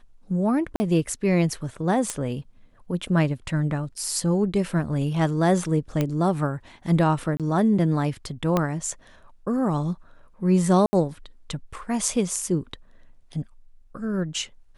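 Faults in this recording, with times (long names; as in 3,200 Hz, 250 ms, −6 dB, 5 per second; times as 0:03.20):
0:00.76–0:00.80: drop-out 40 ms
0:02.10: click −13 dBFS
0:06.01: click −11 dBFS
0:07.37–0:07.40: drop-out 27 ms
0:08.57: click −9 dBFS
0:10.86–0:10.93: drop-out 70 ms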